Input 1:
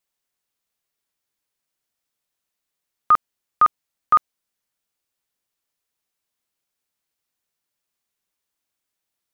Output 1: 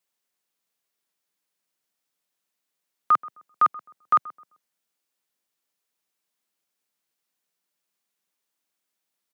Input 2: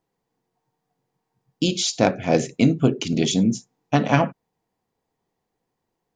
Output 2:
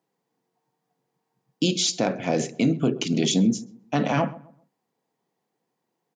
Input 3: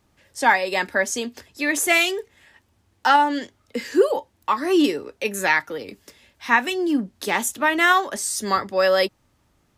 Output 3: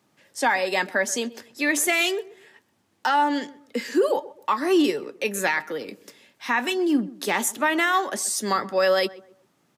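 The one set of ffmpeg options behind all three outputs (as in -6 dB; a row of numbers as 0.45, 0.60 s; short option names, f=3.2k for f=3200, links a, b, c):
-filter_complex "[0:a]highpass=f=140:w=0.5412,highpass=f=140:w=1.3066,alimiter=limit=-12dB:level=0:latency=1:release=44,asplit=2[a][b];[b]adelay=130,lowpass=f=1.3k:p=1,volume=-18dB,asplit=2[c][d];[d]adelay=130,lowpass=f=1.3k:p=1,volume=0.33,asplit=2[e][f];[f]adelay=130,lowpass=f=1.3k:p=1,volume=0.33[g];[c][e][g]amix=inputs=3:normalize=0[h];[a][h]amix=inputs=2:normalize=0"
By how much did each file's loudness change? -3.5, -3.0, -3.0 LU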